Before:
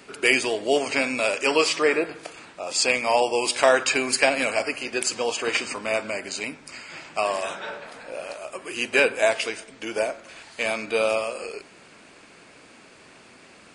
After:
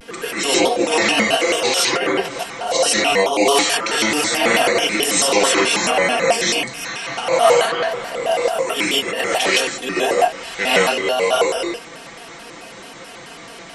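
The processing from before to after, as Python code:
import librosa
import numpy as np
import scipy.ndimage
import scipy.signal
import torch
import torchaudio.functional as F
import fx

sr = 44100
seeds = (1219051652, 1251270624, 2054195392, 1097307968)

y = x + 0.85 * np.pad(x, (int(5.0 * sr / 1000.0), 0))[:len(x)]
y = fx.over_compress(y, sr, threshold_db=-23.0, ratio=-0.5)
y = fx.rev_gated(y, sr, seeds[0], gate_ms=180, shape='rising', drr_db=-7.0)
y = fx.vibrato_shape(y, sr, shape='square', rate_hz=4.6, depth_cents=250.0)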